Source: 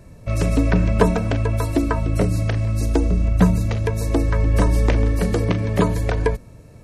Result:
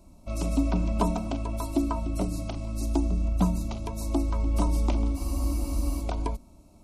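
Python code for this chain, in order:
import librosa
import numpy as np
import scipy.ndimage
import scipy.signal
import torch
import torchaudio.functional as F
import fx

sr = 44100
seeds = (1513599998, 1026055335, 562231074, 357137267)

y = fx.fixed_phaser(x, sr, hz=470.0, stages=6)
y = fx.spec_freeze(y, sr, seeds[0], at_s=5.17, hold_s=0.84)
y = y * librosa.db_to_amplitude(-5.0)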